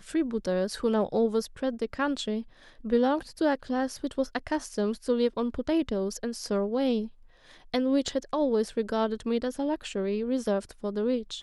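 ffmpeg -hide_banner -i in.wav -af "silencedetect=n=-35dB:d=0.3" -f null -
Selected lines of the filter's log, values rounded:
silence_start: 2.42
silence_end: 2.85 | silence_duration: 0.43
silence_start: 7.07
silence_end: 7.74 | silence_duration: 0.67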